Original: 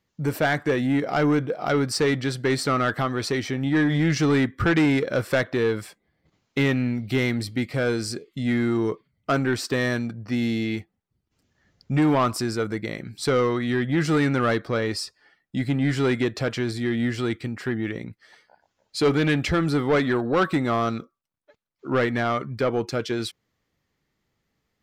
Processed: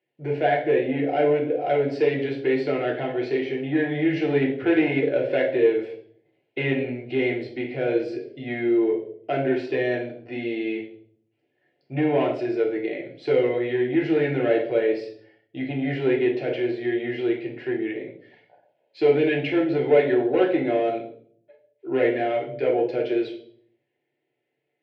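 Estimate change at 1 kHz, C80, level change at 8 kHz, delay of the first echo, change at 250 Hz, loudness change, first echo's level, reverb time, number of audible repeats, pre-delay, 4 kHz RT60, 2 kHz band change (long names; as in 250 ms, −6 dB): −2.5 dB, 12.0 dB, below −25 dB, no echo audible, −1.5 dB, 0.0 dB, no echo audible, 0.60 s, no echo audible, 3 ms, 0.50 s, −3.0 dB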